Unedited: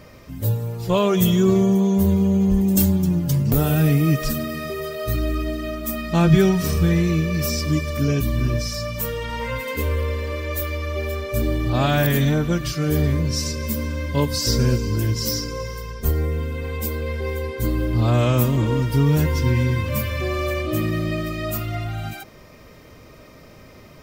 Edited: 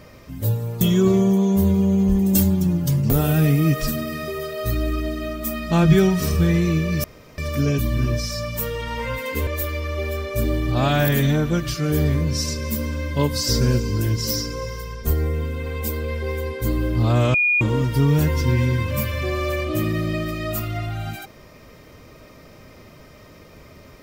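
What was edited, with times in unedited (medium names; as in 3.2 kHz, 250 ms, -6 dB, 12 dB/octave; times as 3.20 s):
0.81–1.23 s: delete
7.46–7.80 s: room tone
9.89–10.45 s: delete
18.32–18.59 s: bleep 2.44 kHz -15 dBFS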